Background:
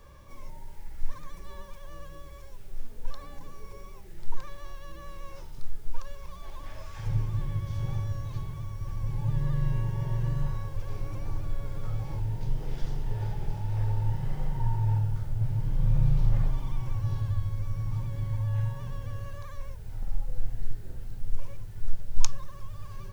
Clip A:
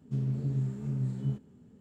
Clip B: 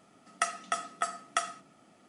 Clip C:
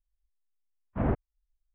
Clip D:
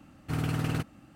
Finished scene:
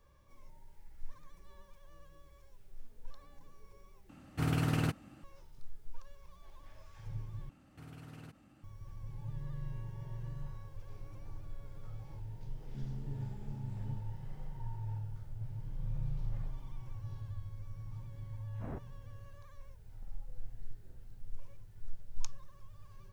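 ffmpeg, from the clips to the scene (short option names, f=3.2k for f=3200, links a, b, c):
-filter_complex "[4:a]asplit=2[a][b];[0:a]volume=-14dB[c];[b]acompressor=threshold=-58dB:ratio=2:attack=29:release=26:knee=1:detection=peak[d];[c]asplit=3[e][f][g];[e]atrim=end=4.094[h];[a]atrim=end=1.15,asetpts=PTS-STARTPTS,volume=-1.5dB[i];[f]atrim=start=5.236:end=7.494[j];[d]atrim=end=1.15,asetpts=PTS-STARTPTS,volume=-7.5dB[k];[g]atrim=start=8.636[l];[1:a]atrim=end=1.8,asetpts=PTS-STARTPTS,volume=-12dB,afade=t=in:d=0.004:c=hsin,afade=t=out:st=1.796:d=0.004:c=hsin,adelay=12630[m];[3:a]atrim=end=1.74,asetpts=PTS-STARTPTS,volume=-16dB,afade=t=in:d=0.004:c=hsin,afade=t=out:st=1.736:d=0.004:c=hsin,adelay=777924S[n];[h][i]acrossfade=d=0.004:c1=hsin:c2=hsin[o];[o][j]acrossfade=d=0.004:c1=hsin:c2=hsin[p];[p][k]acrossfade=d=0.004:c1=hsin:c2=hsin[q];[q][l]acrossfade=d=0.004:c1=hsin:c2=hsin[r];[r][m][n]amix=inputs=3:normalize=0"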